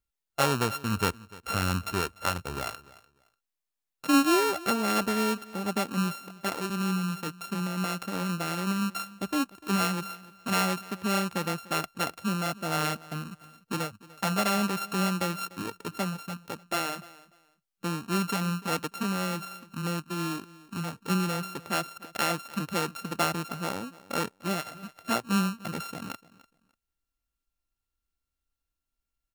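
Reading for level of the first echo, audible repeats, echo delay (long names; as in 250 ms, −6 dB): −20.5 dB, 2, 296 ms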